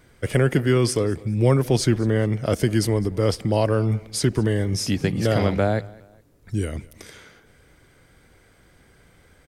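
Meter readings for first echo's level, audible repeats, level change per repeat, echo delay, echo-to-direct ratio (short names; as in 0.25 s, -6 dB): -22.5 dB, 2, -9.0 dB, 0.207 s, -22.0 dB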